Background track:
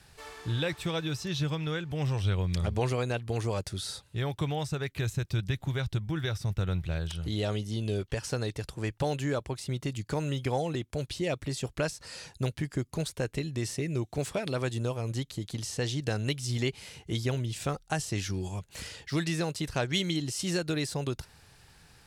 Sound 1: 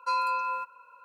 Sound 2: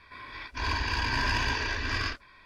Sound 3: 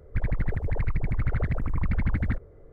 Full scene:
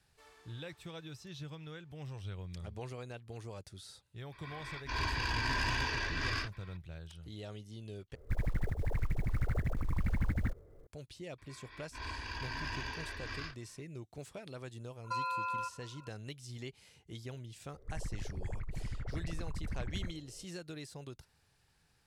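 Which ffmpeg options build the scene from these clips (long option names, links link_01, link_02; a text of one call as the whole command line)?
ffmpeg -i bed.wav -i cue0.wav -i cue1.wav -i cue2.wav -filter_complex "[2:a]asplit=2[link_01][link_02];[3:a]asplit=2[link_03][link_04];[0:a]volume=-15dB[link_05];[link_01]asoftclip=type=tanh:threshold=-22dB[link_06];[link_03]acrusher=bits=8:mode=log:mix=0:aa=0.000001[link_07];[1:a]acompressor=threshold=-30dB:ratio=6:attack=12:release=74:knee=1:detection=peak[link_08];[link_04]alimiter=limit=-23dB:level=0:latency=1:release=71[link_09];[link_05]asplit=2[link_10][link_11];[link_10]atrim=end=8.154[link_12];[link_07]atrim=end=2.72,asetpts=PTS-STARTPTS,volume=-7dB[link_13];[link_11]atrim=start=10.866[link_14];[link_06]atrim=end=2.45,asetpts=PTS-STARTPTS,volume=-4dB,afade=type=in:duration=0.004:curve=hsin,afade=type=out:start_time=2.446:duration=0.004:curve=hsin,adelay=4320[link_15];[link_02]atrim=end=2.45,asetpts=PTS-STARTPTS,volume=-12.5dB,afade=type=in:duration=0.004:curve=hsin,afade=type=out:start_time=2.446:duration=0.004:curve=hsin,adelay=501858S[link_16];[link_08]atrim=end=1.04,asetpts=PTS-STARTPTS,volume=-4.5dB,afade=type=in:duration=0.004:curve=hsin,afade=type=out:start_time=1.036:duration=0.004:curve=hsin,adelay=15040[link_17];[link_09]atrim=end=2.72,asetpts=PTS-STARTPTS,volume=-10dB,afade=type=in:duration=0.004:curve=hsin,afade=type=out:start_time=2.716:duration=0.004:curve=hsin,adelay=17730[link_18];[link_12][link_13]acrossfade=duration=0.004:curve1=hsin:curve2=hsin[link_19];[link_19][link_14]acrossfade=duration=0.004:curve1=hsin:curve2=hsin[link_20];[link_20][link_15][link_16][link_17][link_18]amix=inputs=5:normalize=0" out.wav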